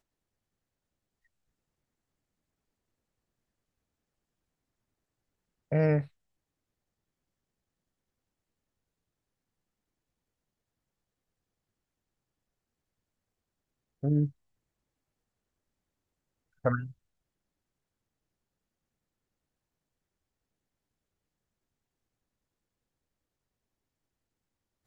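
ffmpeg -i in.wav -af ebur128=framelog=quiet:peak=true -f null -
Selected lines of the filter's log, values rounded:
Integrated loudness:
  I:         -30.1 LUFS
  Threshold: -41.0 LUFS
Loudness range:
  LRA:         5.1 LU
  Threshold: -57.4 LUFS
  LRA low:   -40.5 LUFS
  LRA high:  -35.4 LUFS
True peak:
  Peak:      -13.2 dBFS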